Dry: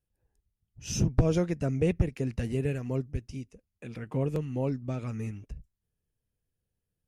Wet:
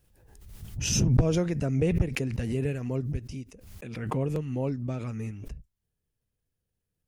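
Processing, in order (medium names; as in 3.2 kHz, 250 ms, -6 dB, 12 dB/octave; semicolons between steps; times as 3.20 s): swell ahead of each attack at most 45 dB/s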